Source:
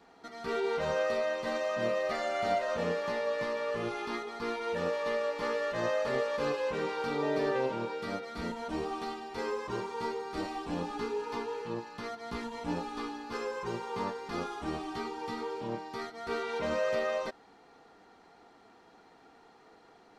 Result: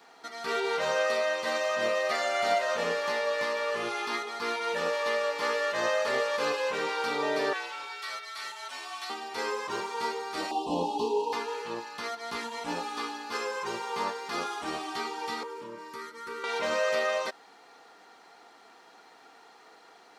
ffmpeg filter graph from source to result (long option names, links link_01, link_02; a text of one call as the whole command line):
ffmpeg -i in.wav -filter_complex "[0:a]asettb=1/sr,asplit=3[link_01][link_02][link_03];[link_01]atrim=end=7.534[link_04];[link_02]atrim=start=7.53:end=9.1,asetpts=PTS-STARTPTS,afade=type=in:duration=0.004:curve=qsin,afade=type=out:start_time=1.566:duration=0.004:curve=qsin,highpass=1300,afreqshift=-51[link_05];[link_03]atrim=start=9.096[link_06];[link_04][link_05]acrossfade=duration=0.004:curve1=hsin:curve2=qsin[link_07];[link_07][link_06]acrossfade=duration=0.004:curve1=qsin:curve2=hsin,asettb=1/sr,asplit=3[link_08][link_09][link_10];[link_08]atrim=end=10.514[link_11];[link_09]atrim=start=10.51:end=11.33,asetpts=PTS-STARTPTS,afade=type=in:duration=0.004:curve=qsin,afade=type=out:start_time=0.816:duration=0.004:curve=qsin,highshelf=frequency=2600:gain=-11.5,acontrast=66,asuperstop=centerf=1700:order=20:qfactor=1.1[link_12];[link_10]atrim=start=11.326[link_13];[link_11][link_12]acrossfade=duration=0.004:curve1=hsin:curve2=qsin[link_14];[link_14][link_13]acrossfade=duration=0.004:curve1=qsin:curve2=hsin,asettb=1/sr,asplit=3[link_15][link_16][link_17];[link_15]atrim=end=15.434[link_18];[link_16]atrim=start=15.43:end=16.44,asetpts=PTS-STARTPTS,afade=type=in:duration=0.004:curve=qsin,afade=type=out:start_time=1.006:duration=0.004:curve=qsin,equalizer=frequency=3800:width=0.75:gain=-8.5,acompressor=threshold=-39dB:ratio=2.5:attack=3.2:release=140:knee=1:detection=peak,asuperstop=centerf=730:order=20:qfactor=2.9[link_19];[link_17]atrim=start=16.436[link_20];[link_18][link_19]acrossfade=duration=0.004:curve1=hsin:curve2=qsin[link_21];[link_21][link_20]acrossfade=duration=0.004:curve1=qsin:curve2=hsin,highpass=frequency=900:poles=1,highshelf=frequency=6400:gain=4.5,volume=7.5dB" out.wav